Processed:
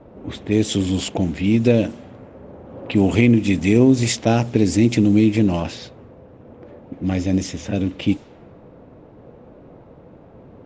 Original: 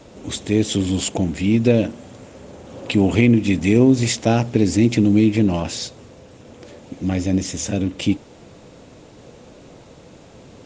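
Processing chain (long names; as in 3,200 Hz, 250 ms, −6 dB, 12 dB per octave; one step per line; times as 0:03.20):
low-pass that shuts in the quiet parts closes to 1,100 Hz, open at −13.5 dBFS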